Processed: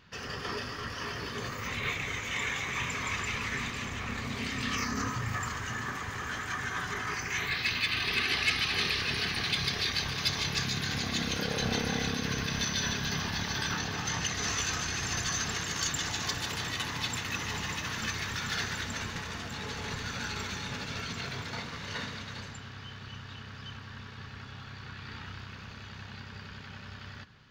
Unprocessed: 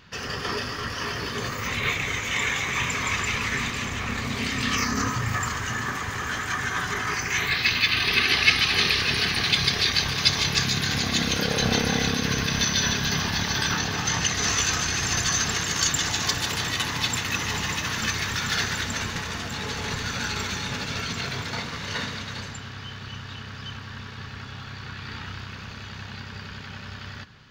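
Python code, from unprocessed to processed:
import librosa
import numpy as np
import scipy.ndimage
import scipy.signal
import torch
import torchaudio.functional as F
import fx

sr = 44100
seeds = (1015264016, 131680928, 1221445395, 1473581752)

y = fx.high_shelf(x, sr, hz=4700.0, db=-3.0)
y = 10.0 ** (-11.5 / 20.0) * np.tanh(y / 10.0 ** (-11.5 / 20.0))
y = F.gain(torch.from_numpy(y), -6.5).numpy()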